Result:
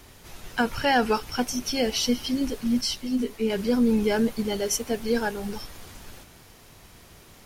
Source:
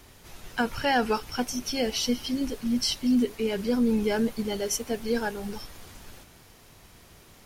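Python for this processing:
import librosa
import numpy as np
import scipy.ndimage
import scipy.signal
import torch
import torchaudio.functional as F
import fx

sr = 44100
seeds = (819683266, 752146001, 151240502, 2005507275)

y = fx.ensemble(x, sr, at=(2.81, 3.5))
y = y * librosa.db_to_amplitude(2.5)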